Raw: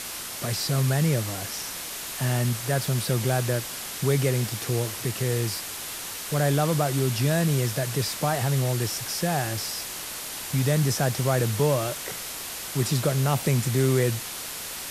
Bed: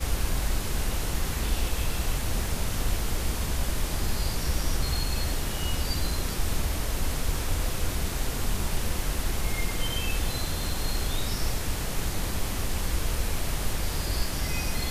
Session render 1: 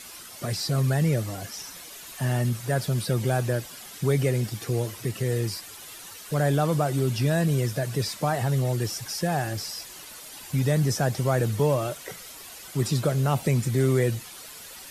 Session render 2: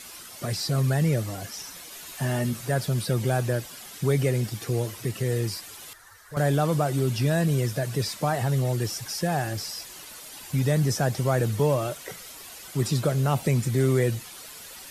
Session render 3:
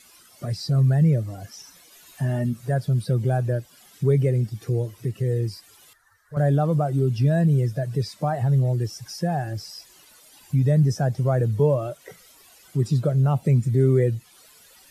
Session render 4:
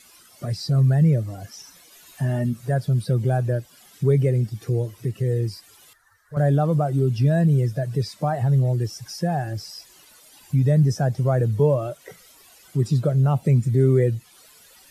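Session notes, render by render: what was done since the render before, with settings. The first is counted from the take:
noise reduction 11 dB, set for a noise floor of -35 dBFS
1.90–2.70 s: doubling 13 ms -6 dB; 5.93–6.37 s: FFT filter 100 Hz 0 dB, 180 Hz -19 dB, 1.8 kHz +1 dB, 2.6 kHz -17 dB, 4.2 kHz -12 dB
in parallel at -1 dB: compression, threshold -34 dBFS, peak gain reduction 15 dB; on the sum: spectral contrast expander 1.5:1
trim +1 dB

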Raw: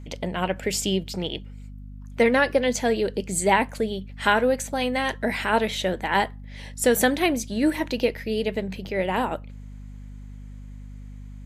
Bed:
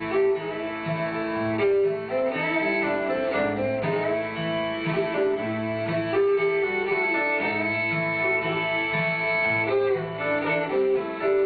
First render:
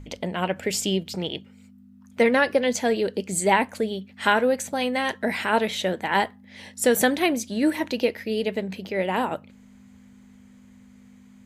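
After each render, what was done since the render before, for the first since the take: de-hum 50 Hz, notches 3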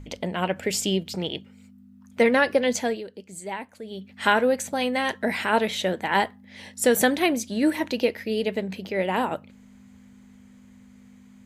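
2.78–4.10 s: dip -13.5 dB, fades 0.26 s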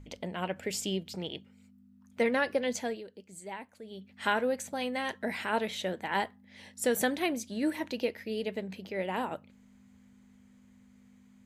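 trim -8.5 dB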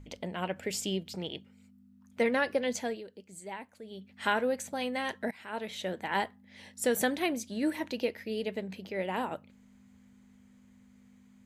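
5.31–5.99 s: fade in, from -20.5 dB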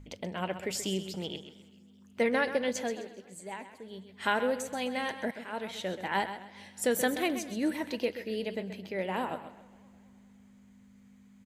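on a send: feedback delay 130 ms, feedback 30%, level -11 dB; on the sum: modulated delay 211 ms, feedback 58%, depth 165 cents, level -24 dB

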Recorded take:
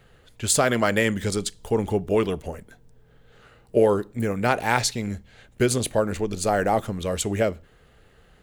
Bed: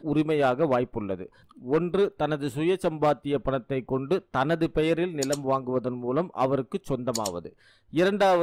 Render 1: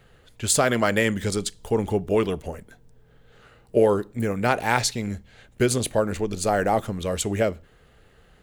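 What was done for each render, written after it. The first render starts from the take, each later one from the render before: no audible change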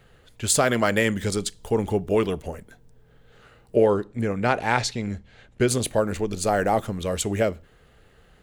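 3.76–5.68 s: distance through air 61 m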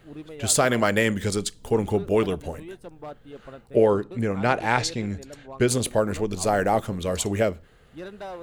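add bed -16 dB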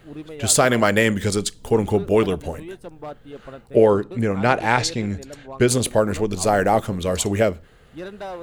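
trim +4 dB; peak limiter -2 dBFS, peak gain reduction 1.5 dB

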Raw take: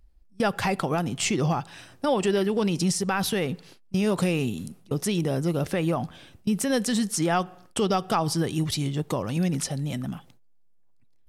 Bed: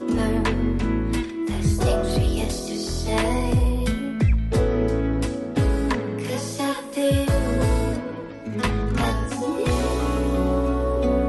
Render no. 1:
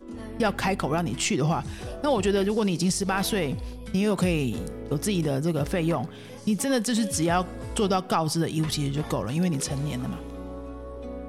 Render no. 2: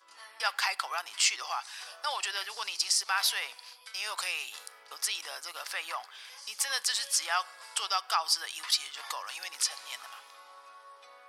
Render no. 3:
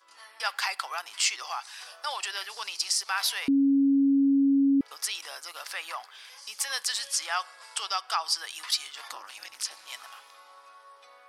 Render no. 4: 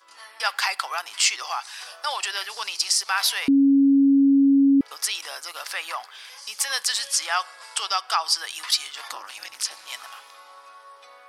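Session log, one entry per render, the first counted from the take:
add bed -16 dB
high-pass 1 kHz 24 dB/octave; peaking EQ 4.8 kHz +8 dB 0.37 oct
3.48–4.81 s: bleep 276 Hz -18.5 dBFS; 7.01–8.43 s: low-pass 11 kHz; 9.08–9.88 s: AM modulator 220 Hz, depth 90%
trim +5.5 dB

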